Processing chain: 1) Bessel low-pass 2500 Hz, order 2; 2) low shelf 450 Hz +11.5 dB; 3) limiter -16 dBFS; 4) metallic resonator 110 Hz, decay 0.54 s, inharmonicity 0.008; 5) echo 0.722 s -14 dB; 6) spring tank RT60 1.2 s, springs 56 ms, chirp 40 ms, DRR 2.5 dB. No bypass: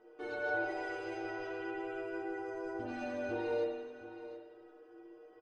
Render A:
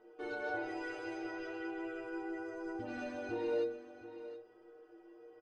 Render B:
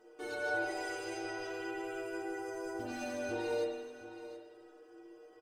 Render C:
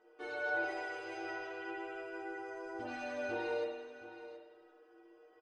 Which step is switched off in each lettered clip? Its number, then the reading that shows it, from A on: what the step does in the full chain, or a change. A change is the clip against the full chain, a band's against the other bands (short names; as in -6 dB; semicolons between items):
6, 250 Hz band +3.5 dB; 1, 4 kHz band +6.5 dB; 2, 125 Hz band -7.0 dB